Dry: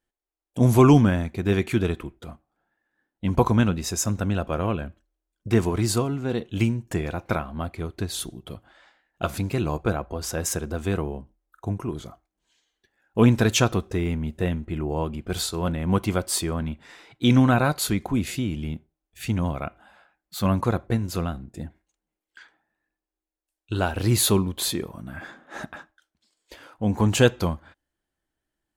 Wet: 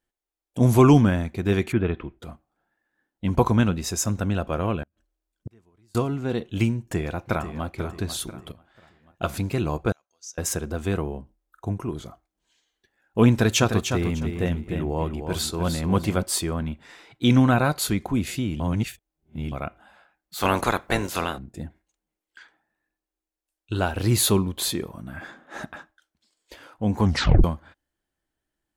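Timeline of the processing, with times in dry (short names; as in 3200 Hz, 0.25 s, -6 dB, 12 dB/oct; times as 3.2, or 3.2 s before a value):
1.71–2.18 LPF 2300 Hz -> 4200 Hz 24 dB/oct
4.83–5.95 flipped gate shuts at -27 dBFS, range -37 dB
6.78–7.64 echo throw 0.49 s, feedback 40%, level -10.5 dB
8.52–9.35 fade in equal-power, from -14.5 dB
9.92–10.38 band-pass 6100 Hz, Q 8.1
13.32–16.23 feedback echo 0.302 s, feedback 20%, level -7 dB
18.6–19.52 reverse
20.38–21.37 spectral limiter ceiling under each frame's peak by 23 dB
27.03 tape stop 0.41 s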